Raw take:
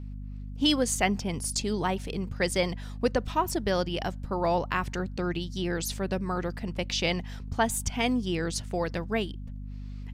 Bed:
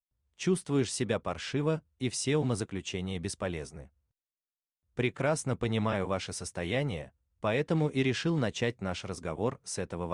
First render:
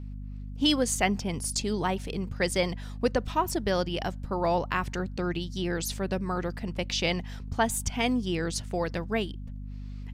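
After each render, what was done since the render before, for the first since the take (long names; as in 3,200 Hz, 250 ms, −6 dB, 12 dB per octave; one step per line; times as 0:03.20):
no processing that can be heard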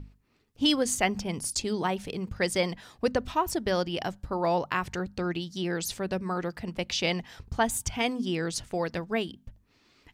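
mains-hum notches 50/100/150/200/250 Hz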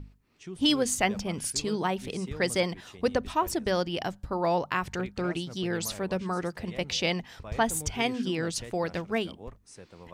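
mix in bed −13.5 dB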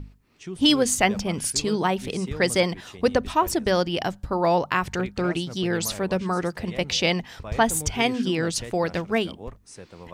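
level +5.5 dB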